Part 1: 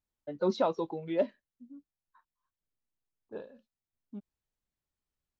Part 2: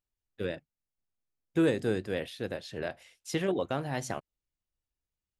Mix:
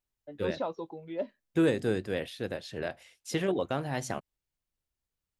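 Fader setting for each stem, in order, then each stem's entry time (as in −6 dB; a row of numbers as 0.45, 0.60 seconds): −5.5, +0.5 decibels; 0.00, 0.00 seconds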